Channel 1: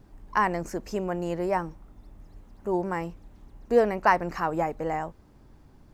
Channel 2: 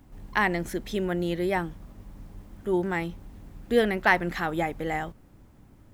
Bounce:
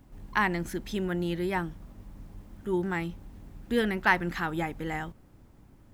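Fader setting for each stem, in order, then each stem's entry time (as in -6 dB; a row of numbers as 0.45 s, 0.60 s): -11.0 dB, -2.5 dB; 0.00 s, 0.00 s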